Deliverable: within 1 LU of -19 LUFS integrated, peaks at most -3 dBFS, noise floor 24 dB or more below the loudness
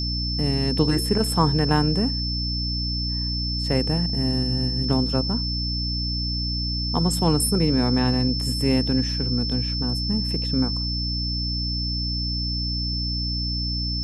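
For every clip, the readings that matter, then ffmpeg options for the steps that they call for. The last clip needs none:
hum 60 Hz; highest harmonic 300 Hz; hum level -25 dBFS; steady tone 5.3 kHz; tone level -27 dBFS; loudness -23.0 LUFS; peak level -6.0 dBFS; loudness target -19.0 LUFS
-> -af "bandreject=f=60:t=h:w=4,bandreject=f=120:t=h:w=4,bandreject=f=180:t=h:w=4,bandreject=f=240:t=h:w=4,bandreject=f=300:t=h:w=4"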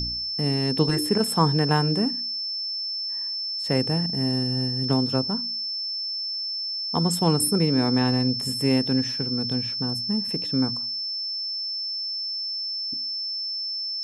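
hum not found; steady tone 5.3 kHz; tone level -27 dBFS
-> -af "bandreject=f=5300:w=30"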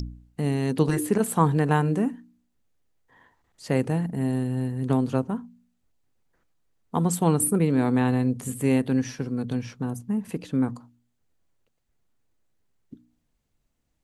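steady tone not found; loudness -25.0 LUFS; peak level -7.5 dBFS; loudness target -19.0 LUFS
-> -af "volume=2,alimiter=limit=0.708:level=0:latency=1"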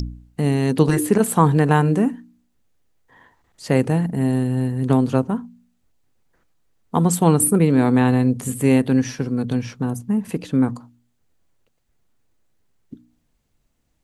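loudness -19.0 LUFS; peak level -3.0 dBFS; noise floor -68 dBFS

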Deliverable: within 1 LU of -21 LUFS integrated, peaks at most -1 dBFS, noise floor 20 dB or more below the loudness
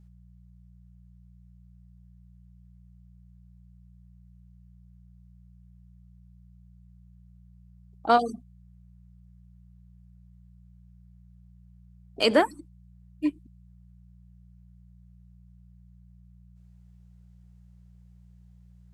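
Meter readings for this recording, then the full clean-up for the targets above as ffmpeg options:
hum 60 Hz; highest harmonic 180 Hz; hum level -51 dBFS; loudness -26.0 LUFS; peak level -8.5 dBFS; loudness target -21.0 LUFS
-> -af "bandreject=f=60:t=h:w=4,bandreject=f=120:t=h:w=4,bandreject=f=180:t=h:w=4"
-af "volume=1.78"

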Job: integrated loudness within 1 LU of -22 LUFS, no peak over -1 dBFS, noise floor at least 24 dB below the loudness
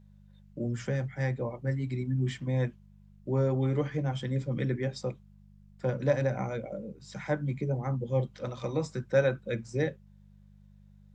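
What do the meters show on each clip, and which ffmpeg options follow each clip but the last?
hum 50 Hz; highest harmonic 200 Hz; hum level -54 dBFS; loudness -31.5 LUFS; peak level -12.5 dBFS; loudness target -22.0 LUFS
-> -af "bandreject=f=50:t=h:w=4,bandreject=f=100:t=h:w=4,bandreject=f=150:t=h:w=4,bandreject=f=200:t=h:w=4"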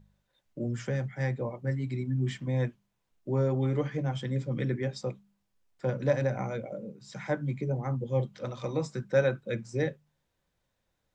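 hum not found; loudness -31.5 LUFS; peak level -12.5 dBFS; loudness target -22.0 LUFS
-> -af "volume=2.99"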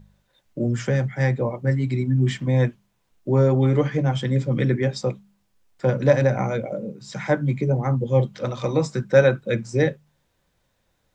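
loudness -22.0 LUFS; peak level -3.0 dBFS; noise floor -70 dBFS

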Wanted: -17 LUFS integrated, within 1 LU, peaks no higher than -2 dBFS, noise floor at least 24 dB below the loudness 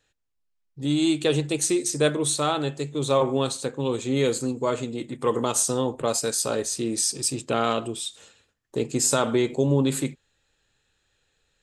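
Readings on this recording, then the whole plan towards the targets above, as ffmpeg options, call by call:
loudness -24.5 LUFS; peak level -8.5 dBFS; loudness target -17.0 LUFS
-> -af "volume=2.37,alimiter=limit=0.794:level=0:latency=1"

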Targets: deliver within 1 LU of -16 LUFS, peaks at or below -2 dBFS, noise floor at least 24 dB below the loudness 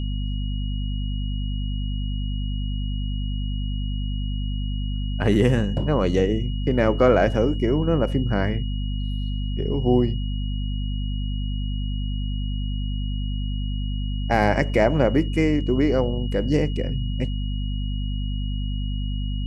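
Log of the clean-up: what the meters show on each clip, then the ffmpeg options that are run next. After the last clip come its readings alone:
hum 50 Hz; highest harmonic 250 Hz; hum level -23 dBFS; steady tone 2.9 kHz; tone level -40 dBFS; loudness -24.5 LUFS; peak level -4.0 dBFS; loudness target -16.0 LUFS
-> -af "bandreject=f=50:t=h:w=4,bandreject=f=100:t=h:w=4,bandreject=f=150:t=h:w=4,bandreject=f=200:t=h:w=4,bandreject=f=250:t=h:w=4"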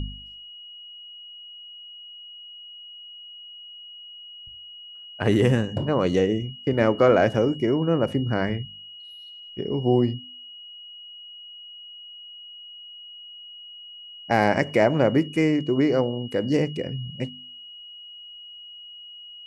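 hum not found; steady tone 2.9 kHz; tone level -40 dBFS
-> -af "bandreject=f=2900:w=30"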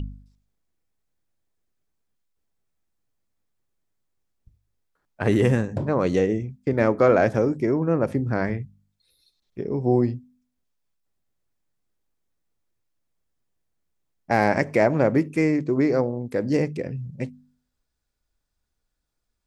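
steady tone not found; loudness -23.0 LUFS; peak level -5.0 dBFS; loudness target -16.0 LUFS
-> -af "volume=2.24,alimiter=limit=0.794:level=0:latency=1"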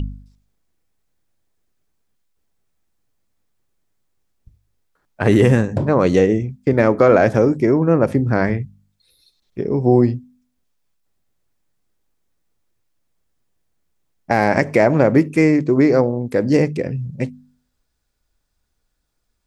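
loudness -16.5 LUFS; peak level -2.0 dBFS; noise floor -71 dBFS

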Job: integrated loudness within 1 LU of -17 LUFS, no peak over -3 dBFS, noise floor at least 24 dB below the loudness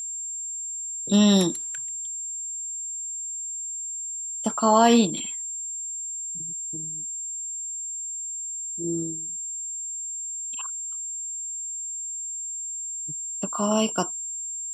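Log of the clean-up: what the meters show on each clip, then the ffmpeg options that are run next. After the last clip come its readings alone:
steady tone 7.4 kHz; tone level -30 dBFS; loudness -26.5 LUFS; peak level -5.5 dBFS; loudness target -17.0 LUFS
-> -af "bandreject=f=7400:w=30"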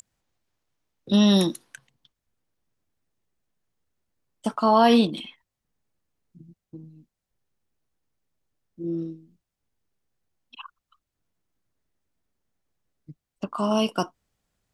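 steady tone not found; loudness -22.5 LUFS; peak level -6.0 dBFS; loudness target -17.0 LUFS
-> -af "volume=1.88,alimiter=limit=0.708:level=0:latency=1"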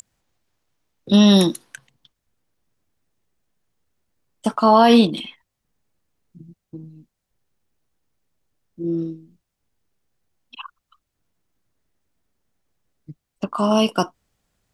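loudness -17.5 LUFS; peak level -3.0 dBFS; noise floor -79 dBFS

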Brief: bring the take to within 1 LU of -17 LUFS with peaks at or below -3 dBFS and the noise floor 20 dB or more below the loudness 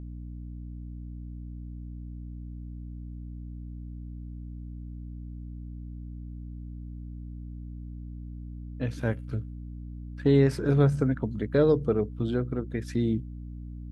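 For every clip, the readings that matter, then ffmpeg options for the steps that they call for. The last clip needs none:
hum 60 Hz; highest harmonic 300 Hz; hum level -37 dBFS; loudness -27.0 LUFS; peak level -10.5 dBFS; loudness target -17.0 LUFS
-> -af "bandreject=f=60:t=h:w=4,bandreject=f=120:t=h:w=4,bandreject=f=180:t=h:w=4,bandreject=f=240:t=h:w=4,bandreject=f=300:t=h:w=4"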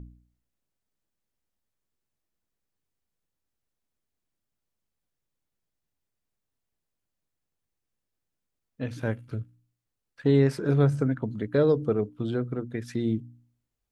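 hum not found; loudness -27.0 LUFS; peak level -10.5 dBFS; loudness target -17.0 LUFS
-> -af "volume=3.16,alimiter=limit=0.708:level=0:latency=1"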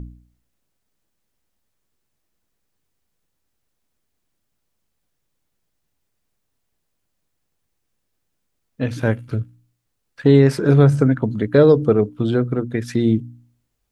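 loudness -17.5 LUFS; peak level -3.0 dBFS; noise floor -74 dBFS

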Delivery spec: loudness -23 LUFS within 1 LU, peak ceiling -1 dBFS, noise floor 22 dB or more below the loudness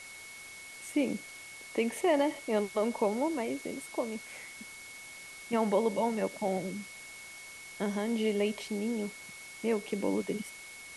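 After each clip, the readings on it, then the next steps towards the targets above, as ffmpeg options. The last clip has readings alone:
steady tone 2.2 kHz; tone level -47 dBFS; noise floor -48 dBFS; noise floor target -55 dBFS; loudness -32.5 LUFS; peak level -16.5 dBFS; loudness target -23.0 LUFS
-> -af "bandreject=f=2200:w=30"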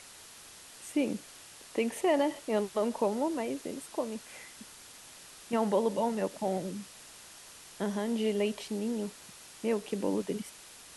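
steady tone not found; noise floor -52 dBFS; noise floor target -55 dBFS
-> -af "afftdn=nr=6:nf=-52"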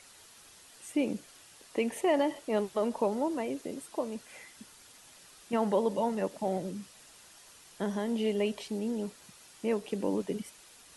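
noise floor -56 dBFS; loudness -32.5 LUFS; peak level -17.0 dBFS; loudness target -23.0 LUFS
-> -af "volume=2.99"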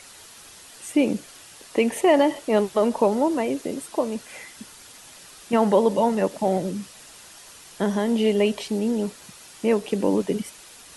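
loudness -23.0 LUFS; peak level -7.0 dBFS; noise floor -46 dBFS

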